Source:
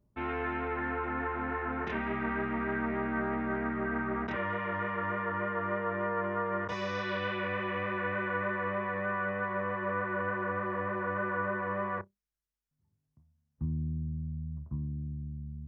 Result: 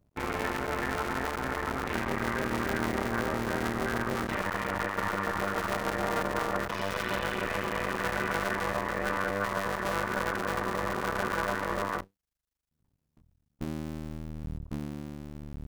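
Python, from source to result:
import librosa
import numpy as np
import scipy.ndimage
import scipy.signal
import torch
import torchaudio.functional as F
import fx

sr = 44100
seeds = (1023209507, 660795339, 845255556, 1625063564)

y = fx.cycle_switch(x, sr, every=2, mode='muted')
y = y * 10.0 ** (5.0 / 20.0)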